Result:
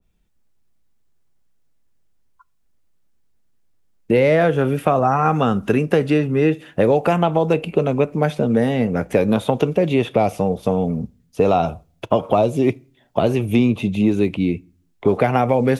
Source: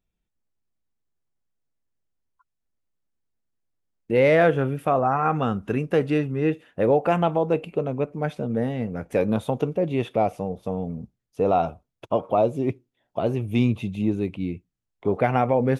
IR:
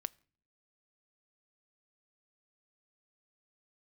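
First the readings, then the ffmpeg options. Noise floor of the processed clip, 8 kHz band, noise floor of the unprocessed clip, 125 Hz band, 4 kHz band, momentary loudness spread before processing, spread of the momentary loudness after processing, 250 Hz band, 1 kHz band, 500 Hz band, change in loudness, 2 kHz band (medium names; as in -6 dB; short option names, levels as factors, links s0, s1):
-62 dBFS, no reading, -80 dBFS, +5.5 dB, +8.0 dB, 10 LU, 5 LU, +6.5 dB, +4.0 dB, +5.0 dB, +5.0 dB, +4.0 dB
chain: -filter_complex "[0:a]acrossover=split=230|1400|3700[s0][s1][s2][s3];[s0]acompressor=threshold=0.0126:ratio=4[s4];[s1]acompressor=threshold=0.0447:ratio=4[s5];[s2]acompressor=threshold=0.00398:ratio=4[s6];[s3]acompressor=threshold=0.00126:ratio=4[s7];[s4][s5][s6][s7]amix=inputs=4:normalize=0,asplit=2[s8][s9];[1:a]atrim=start_sample=2205,lowshelf=f=220:g=5.5[s10];[s9][s10]afir=irnorm=-1:irlink=0,volume=1.58[s11];[s8][s11]amix=inputs=2:normalize=0,adynamicequalizer=threshold=0.0251:dfrequency=1700:dqfactor=0.7:tfrequency=1700:tqfactor=0.7:attack=5:release=100:ratio=0.375:range=3:mode=boostabove:tftype=highshelf,volume=1.58"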